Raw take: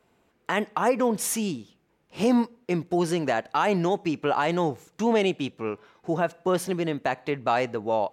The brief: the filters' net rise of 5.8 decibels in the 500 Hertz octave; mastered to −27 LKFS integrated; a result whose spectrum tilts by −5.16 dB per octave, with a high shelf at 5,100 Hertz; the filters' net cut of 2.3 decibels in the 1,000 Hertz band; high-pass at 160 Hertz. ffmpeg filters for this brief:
ffmpeg -i in.wav -af "highpass=160,equalizer=frequency=500:width_type=o:gain=9,equalizer=frequency=1000:width_type=o:gain=-7.5,highshelf=frequency=5100:gain=-3.5,volume=-4dB" out.wav

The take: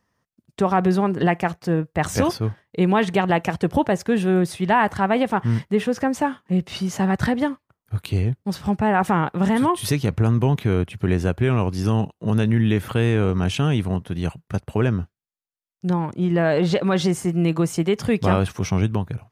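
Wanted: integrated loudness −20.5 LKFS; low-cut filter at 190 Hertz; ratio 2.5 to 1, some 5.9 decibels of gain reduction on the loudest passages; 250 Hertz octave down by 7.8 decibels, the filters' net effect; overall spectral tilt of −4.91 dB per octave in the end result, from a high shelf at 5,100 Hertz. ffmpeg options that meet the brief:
ffmpeg -i in.wav -af "highpass=190,equalizer=frequency=250:width_type=o:gain=-8.5,highshelf=frequency=5100:gain=-8.5,acompressor=threshold=-24dB:ratio=2.5,volume=9dB" out.wav

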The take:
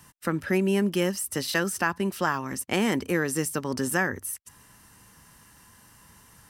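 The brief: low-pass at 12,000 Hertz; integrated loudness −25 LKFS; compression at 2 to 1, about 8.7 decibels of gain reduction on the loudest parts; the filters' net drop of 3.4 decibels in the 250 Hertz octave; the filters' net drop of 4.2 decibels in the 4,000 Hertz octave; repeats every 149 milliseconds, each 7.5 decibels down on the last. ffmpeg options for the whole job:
ffmpeg -i in.wav -af "lowpass=12000,equalizer=frequency=250:width_type=o:gain=-5,equalizer=frequency=4000:width_type=o:gain=-6,acompressor=threshold=-38dB:ratio=2,aecho=1:1:149|298|447|596|745:0.422|0.177|0.0744|0.0312|0.0131,volume=11dB" out.wav

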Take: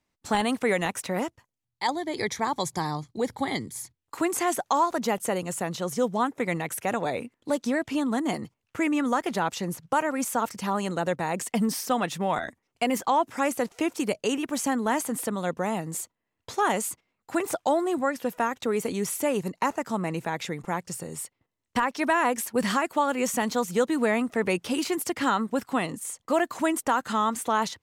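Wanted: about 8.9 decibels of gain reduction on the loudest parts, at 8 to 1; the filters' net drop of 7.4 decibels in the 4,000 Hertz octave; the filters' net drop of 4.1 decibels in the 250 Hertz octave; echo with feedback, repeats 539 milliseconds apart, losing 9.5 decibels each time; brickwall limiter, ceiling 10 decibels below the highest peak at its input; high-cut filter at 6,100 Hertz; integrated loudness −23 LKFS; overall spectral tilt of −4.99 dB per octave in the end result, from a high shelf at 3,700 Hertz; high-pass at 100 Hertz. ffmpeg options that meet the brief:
ffmpeg -i in.wav -af "highpass=100,lowpass=6100,equalizer=frequency=250:width_type=o:gain=-5,highshelf=frequency=3700:gain=-5.5,equalizer=frequency=4000:width_type=o:gain=-6,acompressor=threshold=-29dB:ratio=8,alimiter=level_in=2.5dB:limit=-24dB:level=0:latency=1,volume=-2.5dB,aecho=1:1:539|1078|1617|2156:0.335|0.111|0.0365|0.012,volume=14.5dB" out.wav

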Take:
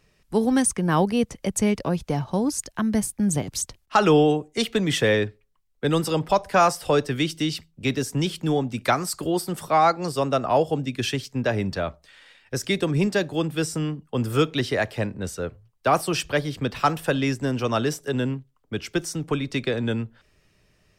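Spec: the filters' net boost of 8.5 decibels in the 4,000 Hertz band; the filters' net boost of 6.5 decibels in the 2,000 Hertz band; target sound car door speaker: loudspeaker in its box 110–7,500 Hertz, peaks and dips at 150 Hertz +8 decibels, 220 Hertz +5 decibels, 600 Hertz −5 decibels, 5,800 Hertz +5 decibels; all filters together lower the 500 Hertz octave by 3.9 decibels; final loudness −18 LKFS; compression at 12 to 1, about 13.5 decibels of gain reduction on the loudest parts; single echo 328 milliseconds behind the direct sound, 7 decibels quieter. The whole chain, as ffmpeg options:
ffmpeg -i in.wav -af "equalizer=frequency=500:width_type=o:gain=-3.5,equalizer=frequency=2000:width_type=o:gain=6.5,equalizer=frequency=4000:width_type=o:gain=8,acompressor=threshold=-26dB:ratio=12,highpass=110,equalizer=frequency=150:width_type=q:width=4:gain=8,equalizer=frequency=220:width_type=q:width=4:gain=5,equalizer=frequency=600:width_type=q:width=4:gain=-5,equalizer=frequency=5800:width_type=q:width=4:gain=5,lowpass=frequency=7500:width=0.5412,lowpass=frequency=7500:width=1.3066,aecho=1:1:328:0.447,volume=10.5dB" out.wav

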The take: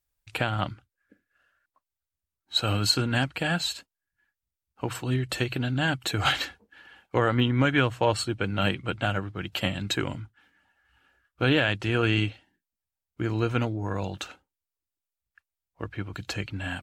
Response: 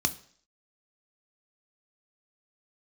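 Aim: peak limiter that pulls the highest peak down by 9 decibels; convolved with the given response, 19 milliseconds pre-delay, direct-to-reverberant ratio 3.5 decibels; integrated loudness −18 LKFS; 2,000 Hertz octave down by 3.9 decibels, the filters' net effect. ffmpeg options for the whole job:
-filter_complex "[0:a]equalizer=frequency=2000:width_type=o:gain=-5.5,alimiter=limit=-18.5dB:level=0:latency=1,asplit=2[link_01][link_02];[1:a]atrim=start_sample=2205,adelay=19[link_03];[link_02][link_03]afir=irnorm=-1:irlink=0,volume=-10.5dB[link_04];[link_01][link_04]amix=inputs=2:normalize=0,volume=10.5dB"

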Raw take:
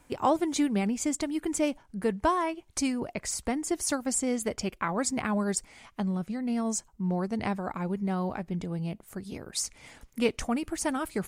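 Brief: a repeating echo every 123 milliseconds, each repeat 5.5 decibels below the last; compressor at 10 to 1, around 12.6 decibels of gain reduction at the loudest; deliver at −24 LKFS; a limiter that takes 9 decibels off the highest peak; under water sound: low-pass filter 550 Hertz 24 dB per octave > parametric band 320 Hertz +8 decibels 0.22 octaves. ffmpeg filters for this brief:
ffmpeg -i in.wav -af "acompressor=threshold=-33dB:ratio=10,alimiter=level_in=4.5dB:limit=-24dB:level=0:latency=1,volume=-4.5dB,lowpass=frequency=550:width=0.5412,lowpass=frequency=550:width=1.3066,equalizer=frequency=320:width_type=o:width=0.22:gain=8,aecho=1:1:123|246|369|492|615|738|861:0.531|0.281|0.149|0.079|0.0419|0.0222|0.0118,volume=13dB" out.wav

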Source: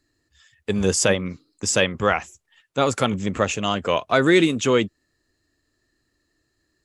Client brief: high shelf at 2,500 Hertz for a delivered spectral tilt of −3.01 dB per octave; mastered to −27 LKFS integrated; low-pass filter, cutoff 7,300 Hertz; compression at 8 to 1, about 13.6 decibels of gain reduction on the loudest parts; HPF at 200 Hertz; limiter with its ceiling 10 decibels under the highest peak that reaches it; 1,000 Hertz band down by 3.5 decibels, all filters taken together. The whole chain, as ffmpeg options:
ffmpeg -i in.wav -af "highpass=200,lowpass=7300,equalizer=frequency=1000:width_type=o:gain=-6.5,highshelf=frequency=2500:gain=6.5,acompressor=threshold=-27dB:ratio=8,volume=8.5dB,alimiter=limit=-15.5dB:level=0:latency=1" out.wav

